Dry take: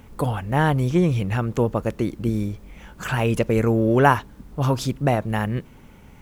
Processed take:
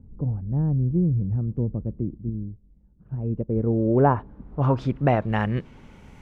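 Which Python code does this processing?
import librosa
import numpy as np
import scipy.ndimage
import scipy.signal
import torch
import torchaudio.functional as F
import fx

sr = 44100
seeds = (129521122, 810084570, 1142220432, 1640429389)

y = fx.filter_sweep_lowpass(x, sr, from_hz=220.0, to_hz=8100.0, start_s=3.07, end_s=6.09, q=0.73)
y = fx.upward_expand(y, sr, threshold_db=-42.0, expansion=1.5, at=(2.17, 4.06), fade=0.02)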